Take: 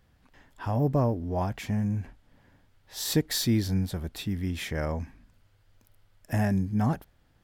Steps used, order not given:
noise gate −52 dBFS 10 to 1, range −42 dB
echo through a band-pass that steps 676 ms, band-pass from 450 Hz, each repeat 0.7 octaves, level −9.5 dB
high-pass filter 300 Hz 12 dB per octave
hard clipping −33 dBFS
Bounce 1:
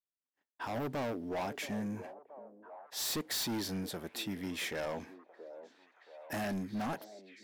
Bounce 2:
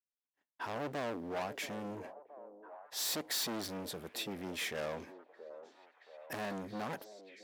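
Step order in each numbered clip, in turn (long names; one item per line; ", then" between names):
high-pass filter, then noise gate, then hard clipping, then echo through a band-pass that steps
hard clipping, then high-pass filter, then noise gate, then echo through a band-pass that steps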